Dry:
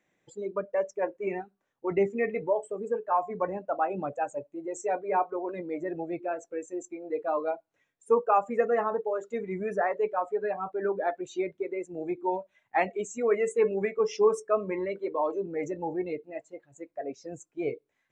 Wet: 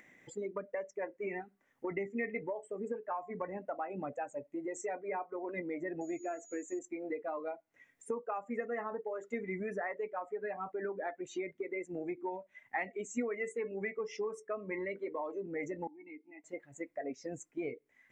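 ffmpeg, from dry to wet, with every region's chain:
ffmpeg -i in.wav -filter_complex "[0:a]asettb=1/sr,asplit=3[link_01][link_02][link_03];[link_01]atrim=end=6.014[link_04];[link_02]atrim=start=6.01:end=6.79,asetpts=PTS-STARTPTS,afade=type=in:duration=0.004:curve=qsin,afade=type=out:start_time=0.776:duration=0.004:curve=qsin,aecho=1:1:2.9:0.47,atrim=end_sample=34398,aeval=exprs='val(0)+0.00282*sin(2*PI*6800*n/s)':channel_layout=same[link_05];[link_03]atrim=start=6.786[link_06];[link_04][link_05]acrossfade=duration=0.004:curve1=hsin:curve2=qsin[link_07];[link_07][link_06]acrossfade=duration=0.004:curve1=qsin:curve2=hsin,asettb=1/sr,asplit=3[link_08][link_09][link_10];[link_08]atrim=end=15.874[link_11];[link_09]atrim=start=15.87:end=16.44,asetpts=PTS-STARTPTS,afade=type=in:duration=0.004:curve=qsin,afade=type=out:start_time=0.566:duration=0.004:curve=qsin,asplit=3[link_12][link_13][link_14];[link_12]bandpass=frequency=300:width_type=q:width=8,volume=0dB[link_15];[link_13]bandpass=frequency=870:width_type=q:width=8,volume=-6dB[link_16];[link_14]bandpass=frequency=2240:width_type=q:width=8,volume=-9dB[link_17];[link_15][link_16][link_17]amix=inputs=3:normalize=0,tiltshelf=frequency=650:gain=-5,acompressor=threshold=-57dB:ratio=2:attack=3.2:release=140:knee=1:detection=peak[link_18];[link_10]atrim=start=16.436[link_19];[link_11][link_18]acrossfade=duration=0.004:curve1=hsin:curve2=qsin[link_20];[link_20][link_19]acrossfade=duration=0.004:curve1=qsin:curve2=hsin,acompressor=threshold=-39dB:ratio=5,equalizer=frequency=250:width_type=o:width=0.33:gain=8,equalizer=frequency=2000:width_type=o:width=0.33:gain=12,equalizer=frequency=4000:width_type=o:width=0.33:gain=-5,acompressor=mode=upward:threshold=-55dB:ratio=2.5,volume=1.5dB" out.wav

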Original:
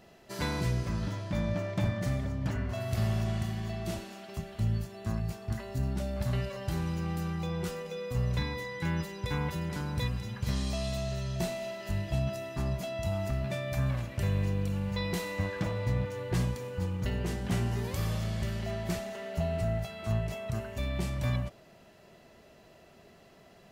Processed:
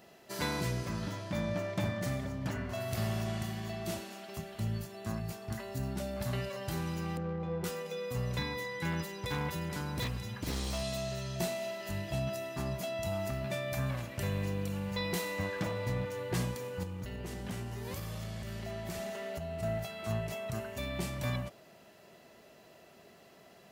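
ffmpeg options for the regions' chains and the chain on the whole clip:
ffmpeg -i in.wav -filter_complex "[0:a]asettb=1/sr,asplit=3[link_01][link_02][link_03];[link_01]atrim=end=7.174[link_04];[link_02]atrim=start=7.17:end=7.64,asetpts=PTS-STARTPTS,afade=type=in:duration=0.004:curve=qsin,afade=type=out:start_time=0.466:duration=0.004:curve=qsin,adynamicsmooth=sensitivity=2.5:basefreq=1000,aeval=exprs='val(0)+0.0112*sin(2*PI*500*n/s)':channel_layout=same[link_05];[link_03]atrim=start=7.636[link_06];[link_04][link_05]acrossfade=duration=0.004:curve1=hsin:curve2=qsin[link_07];[link_07][link_06]acrossfade=duration=0.004:curve1=qsin:curve2=hsin,asettb=1/sr,asplit=3[link_08][link_09][link_10];[link_08]atrim=end=8.914[link_11];[link_09]atrim=start=8.91:end=10.83,asetpts=PTS-STARTPTS,afade=type=in:duration=0.004:curve=qsin,afade=type=out:start_time=1.916:duration=0.004:curve=qsin,asubboost=boost=3:cutoff=140,aeval=exprs='0.0631*(abs(mod(val(0)/0.0631+3,4)-2)-1)':channel_layout=same[link_12];[link_10]atrim=start=10.826[link_13];[link_11][link_12]acrossfade=duration=0.004:curve1=hsin:curve2=qsin[link_14];[link_14][link_13]acrossfade=duration=0.004:curve1=qsin:curve2=hsin,asettb=1/sr,asplit=3[link_15][link_16][link_17];[link_15]atrim=end=16.834[link_18];[link_16]atrim=start=16.83:end=19.63,asetpts=PTS-STARTPTS,afade=type=in:duration=0.004:curve=qsin,afade=type=out:start_time=2.796:duration=0.004:curve=qsin,lowshelf=frequency=66:gain=11.5,acompressor=threshold=-31dB:ratio=6:attack=3.2:release=140:knee=1:detection=peak,bandreject=frequency=175:width_type=h:width=4,bandreject=frequency=350:width_type=h:width=4,bandreject=frequency=525:width_type=h:width=4,bandreject=frequency=700:width_type=h:width=4,bandreject=frequency=875:width_type=h:width=4,bandreject=frequency=1050:width_type=h:width=4,bandreject=frequency=1225:width_type=h:width=4,bandreject=frequency=1400:width_type=h:width=4,bandreject=frequency=1575:width_type=h:width=4,bandreject=frequency=1750:width_type=h:width=4,bandreject=frequency=1925:width_type=h:width=4,bandreject=frequency=2100:width_type=h:width=4,bandreject=frequency=2275:width_type=h:width=4,bandreject=frequency=2450:width_type=h:width=4,bandreject=frequency=2625:width_type=h:width=4,bandreject=frequency=2800:width_type=h:width=4,bandreject=frequency=2975:width_type=h:width=4,bandreject=frequency=3150:width_type=h:width=4,bandreject=frequency=3325:width_type=h:width=4,bandreject=frequency=3500:width_type=h:width=4,bandreject=frequency=3675:width_type=h:width=4,bandreject=frequency=3850:width_type=h:width=4,bandreject=frequency=4025:width_type=h:width=4,bandreject=frequency=4200:width_type=h:width=4,bandreject=frequency=4375:width_type=h:width=4,bandreject=frequency=4550:width_type=h:width=4,bandreject=frequency=4725:width_type=h:width=4,bandreject=frequency=4900:width_type=h:width=4,bandreject=frequency=5075:width_type=h:width=4,bandreject=frequency=5250:width_type=h:width=4,bandreject=frequency=5425:width_type=h:width=4[link_19];[link_17]atrim=start=19.626[link_20];[link_18][link_19]acrossfade=duration=0.004:curve1=hsin:curve2=qsin[link_21];[link_21][link_20]acrossfade=duration=0.004:curve1=qsin:curve2=hsin,highpass=frequency=180:poles=1,highshelf=frequency=11000:gain=7.5" out.wav

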